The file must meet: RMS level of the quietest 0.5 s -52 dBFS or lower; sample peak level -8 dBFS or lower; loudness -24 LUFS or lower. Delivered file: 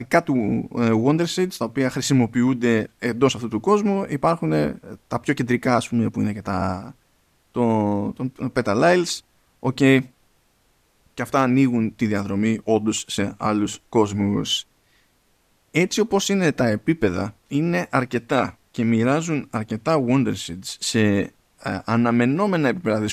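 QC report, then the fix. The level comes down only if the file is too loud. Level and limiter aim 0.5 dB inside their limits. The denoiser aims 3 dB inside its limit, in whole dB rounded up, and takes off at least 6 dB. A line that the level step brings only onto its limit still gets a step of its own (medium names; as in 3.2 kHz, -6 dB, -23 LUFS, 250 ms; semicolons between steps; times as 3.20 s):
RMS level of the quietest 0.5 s -63 dBFS: pass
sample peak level -3.0 dBFS: fail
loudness -21.5 LUFS: fail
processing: trim -3 dB; peak limiter -8.5 dBFS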